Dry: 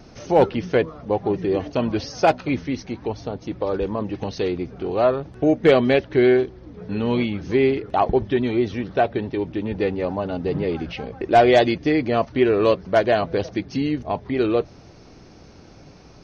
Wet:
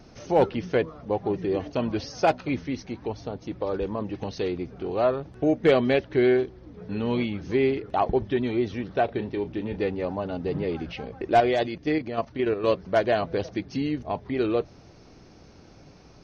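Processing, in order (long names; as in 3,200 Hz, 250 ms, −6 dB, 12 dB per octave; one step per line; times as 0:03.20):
0:09.05–0:09.83: double-tracking delay 34 ms −11 dB
0:11.40–0:12.68: output level in coarse steps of 9 dB
level −4.5 dB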